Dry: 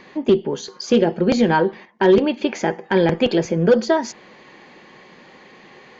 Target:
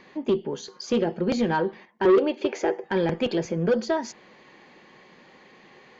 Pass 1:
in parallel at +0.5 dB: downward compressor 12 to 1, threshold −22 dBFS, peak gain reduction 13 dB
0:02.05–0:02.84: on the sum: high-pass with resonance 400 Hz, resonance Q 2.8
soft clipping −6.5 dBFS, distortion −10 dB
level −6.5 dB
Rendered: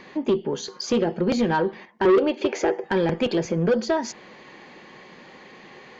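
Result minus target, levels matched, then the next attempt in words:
downward compressor: peak gain reduction +13 dB
0:02.05–0:02.84: high-pass with resonance 400 Hz, resonance Q 2.8
soft clipping −6.5 dBFS, distortion −11 dB
level −6.5 dB

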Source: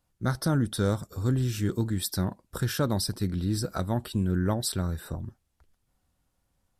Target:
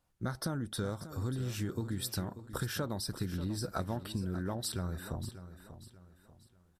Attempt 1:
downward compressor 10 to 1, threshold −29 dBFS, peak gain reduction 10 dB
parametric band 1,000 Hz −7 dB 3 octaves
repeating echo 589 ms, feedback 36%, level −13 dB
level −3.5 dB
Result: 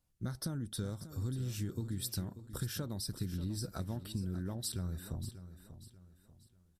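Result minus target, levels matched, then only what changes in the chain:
1,000 Hz band −8.0 dB
change: parametric band 1,000 Hz +3.5 dB 3 octaves

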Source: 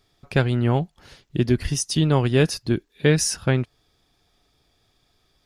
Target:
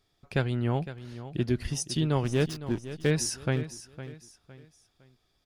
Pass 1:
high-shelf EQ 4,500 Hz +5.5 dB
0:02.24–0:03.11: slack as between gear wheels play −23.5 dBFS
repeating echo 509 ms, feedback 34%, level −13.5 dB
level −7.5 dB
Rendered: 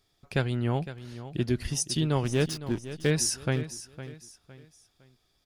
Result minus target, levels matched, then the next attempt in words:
8,000 Hz band +3.5 dB
0:02.24–0:03.11: slack as between gear wheels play −23.5 dBFS
repeating echo 509 ms, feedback 34%, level −13.5 dB
level −7.5 dB

